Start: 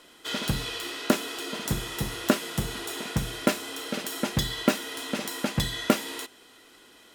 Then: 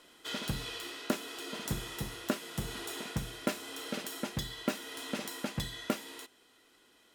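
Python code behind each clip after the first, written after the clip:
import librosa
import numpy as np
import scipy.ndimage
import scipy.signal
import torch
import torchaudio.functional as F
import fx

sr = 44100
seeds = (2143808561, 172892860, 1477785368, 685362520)

y = fx.rider(x, sr, range_db=10, speed_s=0.5)
y = y * 10.0 ** (-8.5 / 20.0)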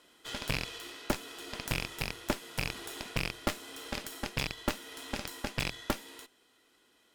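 y = fx.rattle_buzz(x, sr, strikes_db=-44.0, level_db=-21.0)
y = fx.cheby_harmonics(y, sr, harmonics=(6,), levels_db=(-9,), full_scale_db=-12.5)
y = y * 10.0 ** (-3.0 / 20.0)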